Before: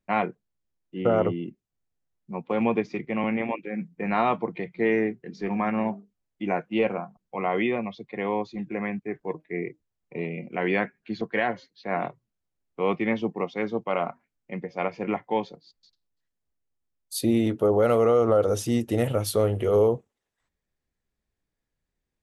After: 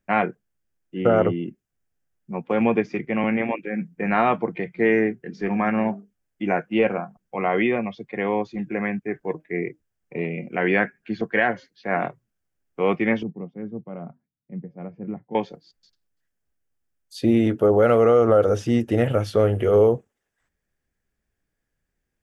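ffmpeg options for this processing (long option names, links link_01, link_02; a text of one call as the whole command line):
ffmpeg -i in.wav -filter_complex "[0:a]asettb=1/sr,asplit=3[link_01][link_02][link_03];[link_01]atrim=end=13.234[link_04];[link_02]atrim=start=13.23:end=15.35,asetpts=PTS-STARTPTS,afade=type=in:duration=0.004:curve=qsin,afade=type=out:start_time=2.116:duration=0.004:curve=qsin,bandpass=frequency=150:width_type=q:width=1.6[link_05];[link_03]atrim=start=15.346[link_06];[link_04][link_05]acrossfade=duration=0.004:curve1=hsin:curve2=qsin[link_07];[link_07][link_06]acrossfade=duration=0.004:curve1=qsin:curve2=hsin,acrossover=split=5000[link_08][link_09];[link_09]acompressor=threshold=-59dB:ratio=4:attack=1:release=60[link_10];[link_08][link_10]amix=inputs=2:normalize=0,equalizer=frequency=1000:width_type=o:width=0.33:gain=-4,equalizer=frequency=1600:width_type=o:width=0.33:gain=6,equalizer=frequency=4000:width_type=o:width=0.33:gain=-8,volume=4dB" out.wav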